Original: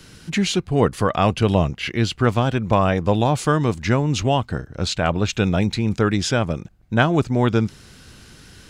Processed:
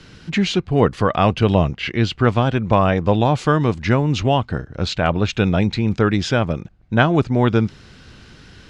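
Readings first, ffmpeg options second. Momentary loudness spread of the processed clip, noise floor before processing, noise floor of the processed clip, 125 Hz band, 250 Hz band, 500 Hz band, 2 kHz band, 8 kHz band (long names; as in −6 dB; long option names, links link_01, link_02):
5 LU, −47 dBFS, −46 dBFS, +2.0 dB, +2.0 dB, +2.0 dB, +2.0 dB, −6.0 dB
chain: -af "lowpass=4500,volume=2dB"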